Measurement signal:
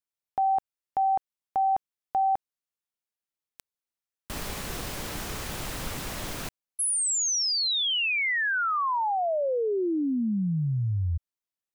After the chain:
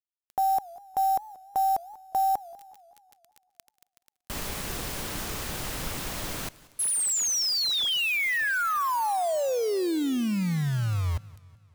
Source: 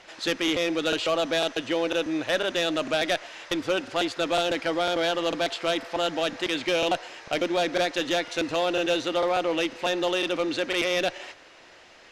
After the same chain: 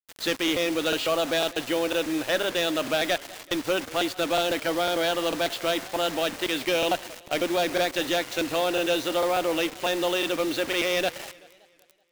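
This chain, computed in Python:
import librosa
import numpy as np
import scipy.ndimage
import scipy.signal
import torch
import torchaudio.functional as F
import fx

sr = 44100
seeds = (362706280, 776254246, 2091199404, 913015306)

y = fx.dmg_crackle(x, sr, seeds[0], per_s=51.0, level_db=-41.0)
y = fx.quant_dither(y, sr, seeds[1], bits=6, dither='none')
y = fx.echo_warbled(y, sr, ms=190, feedback_pct=52, rate_hz=2.8, cents=208, wet_db=-21)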